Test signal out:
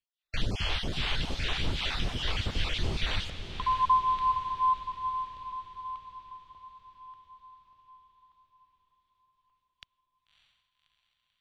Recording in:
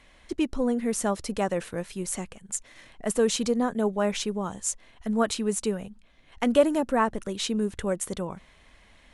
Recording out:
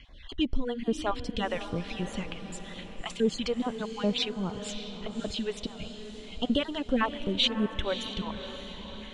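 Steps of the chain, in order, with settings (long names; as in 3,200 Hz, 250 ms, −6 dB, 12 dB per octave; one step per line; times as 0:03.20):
time-frequency cells dropped at random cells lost 24%
low-shelf EQ 140 Hz +8 dB
in parallel at −2 dB: downward compressor, threshold −33 dBFS
on the sum: low-pass with resonance 3,300 Hz, resonance Q 3.1
all-pass phaser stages 2, 2.5 Hz, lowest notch 160–2,600 Hz
on a send: feedback delay with all-pass diffusion 595 ms, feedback 53%, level −10 dB
on the sum: level −3 dB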